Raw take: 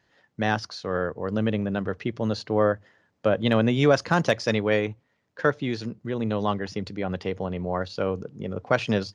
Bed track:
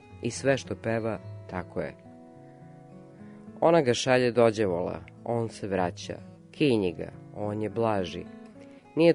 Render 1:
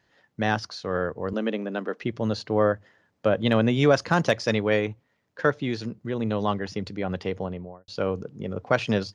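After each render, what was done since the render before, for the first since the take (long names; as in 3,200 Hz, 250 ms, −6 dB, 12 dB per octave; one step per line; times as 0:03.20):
0:01.33–0:02.03: Butterworth high-pass 220 Hz
0:07.34–0:07.88: fade out and dull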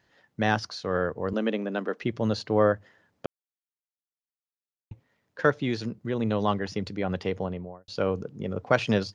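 0:03.26–0:04.91: silence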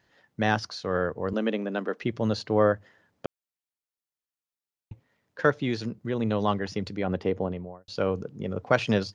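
0:07.07–0:07.52: drawn EQ curve 170 Hz 0 dB, 270 Hz +5 dB, 4,700 Hz −7 dB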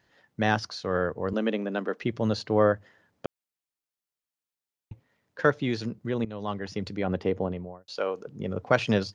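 0:06.25–0:06.91: fade in, from −16 dB
0:07.87–0:08.27: high-pass filter 450 Hz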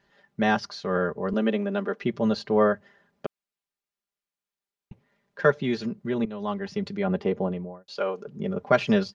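high-shelf EQ 6,400 Hz −9.5 dB
comb filter 5 ms, depth 75%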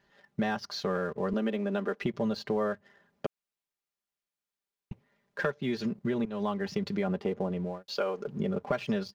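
downward compressor 6 to 1, threshold −31 dBFS, peak gain reduction 16.5 dB
leveller curve on the samples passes 1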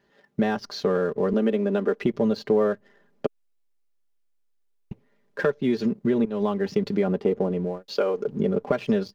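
in parallel at −8.5 dB: slack as between gear wheels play −36.5 dBFS
on the sum: hollow resonant body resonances 280/430 Hz, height 7 dB, ringing for 20 ms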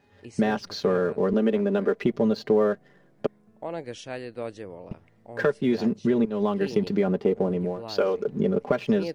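mix in bed track −13 dB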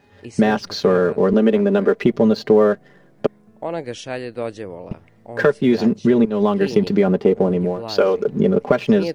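level +7.5 dB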